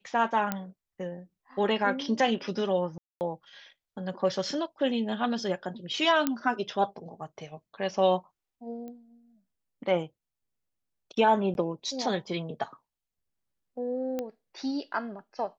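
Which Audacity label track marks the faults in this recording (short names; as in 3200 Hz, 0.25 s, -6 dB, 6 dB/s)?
0.520000	0.520000	pop -14 dBFS
2.980000	3.210000	gap 0.229 s
6.270000	6.270000	pop -11 dBFS
8.880000	8.880000	pop -31 dBFS
11.540000	11.550000	gap 11 ms
14.190000	14.190000	pop -19 dBFS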